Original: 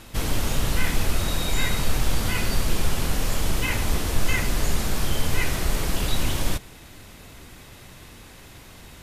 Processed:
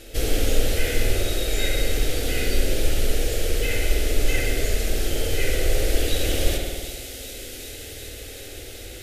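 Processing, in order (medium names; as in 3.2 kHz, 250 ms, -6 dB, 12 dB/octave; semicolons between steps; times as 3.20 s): peaking EQ 480 Hz +6.5 dB 0.6 oct; static phaser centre 420 Hz, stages 4; on a send: feedback echo behind a high-pass 381 ms, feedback 80%, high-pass 4 kHz, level -10 dB; on the sum: spring tank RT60 1.7 s, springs 53 ms, chirp 35 ms, DRR -0.5 dB; gain riding within 5 dB 2 s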